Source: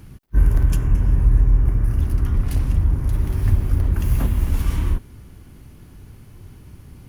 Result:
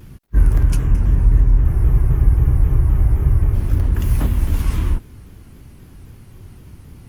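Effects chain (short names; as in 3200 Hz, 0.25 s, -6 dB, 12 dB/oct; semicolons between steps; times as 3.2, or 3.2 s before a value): spectral freeze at 1.68, 1.85 s; shaped vibrato saw down 3.8 Hz, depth 160 cents; gain +2 dB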